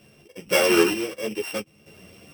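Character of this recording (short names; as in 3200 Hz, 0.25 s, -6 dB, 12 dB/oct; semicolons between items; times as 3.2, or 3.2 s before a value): a buzz of ramps at a fixed pitch in blocks of 16 samples; random-step tremolo 4.3 Hz, depth 70%; a shimmering, thickened sound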